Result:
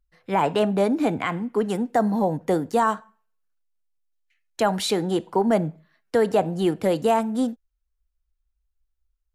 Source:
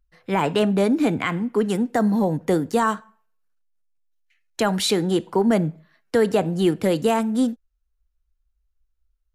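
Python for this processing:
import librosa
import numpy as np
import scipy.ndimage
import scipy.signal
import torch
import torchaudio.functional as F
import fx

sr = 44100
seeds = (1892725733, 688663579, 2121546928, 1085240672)

y = fx.dynamic_eq(x, sr, hz=750.0, q=1.2, threshold_db=-35.0, ratio=4.0, max_db=7)
y = y * 10.0 ** (-4.0 / 20.0)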